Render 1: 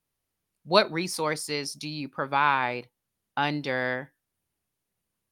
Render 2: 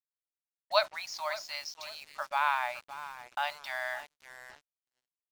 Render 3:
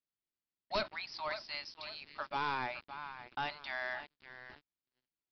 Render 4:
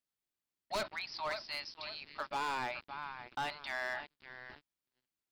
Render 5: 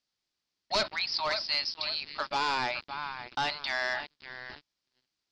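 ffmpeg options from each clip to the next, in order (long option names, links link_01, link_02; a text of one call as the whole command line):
ffmpeg -i in.wav -filter_complex "[0:a]afftfilt=real='re*between(b*sr/4096,570,7000)':imag='im*between(b*sr/4096,570,7000)':win_size=4096:overlap=0.75,asplit=2[link_01][link_02];[link_02]adelay=562,lowpass=frequency=4200:poles=1,volume=-14dB,asplit=2[link_03][link_04];[link_04]adelay=562,lowpass=frequency=4200:poles=1,volume=0.29,asplit=2[link_05][link_06];[link_06]adelay=562,lowpass=frequency=4200:poles=1,volume=0.29[link_07];[link_01][link_03][link_05][link_07]amix=inputs=4:normalize=0,acrusher=bits=6:mix=0:aa=0.5,volume=-5.5dB" out.wav
ffmpeg -i in.wav -af "aresample=11025,asoftclip=type=tanh:threshold=-26.5dB,aresample=44100,lowshelf=frequency=440:width_type=q:width=1.5:gain=7,volume=-1.5dB" out.wav
ffmpeg -i in.wav -af "volume=33.5dB,asoftclip=hard,volume=-33.5dB,volume=1.5dB" out.wav
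ffmpeg -i in.wav -af "lowpass=frequency=5000:width_type=q:width=2.7,volume=6dB" out.wav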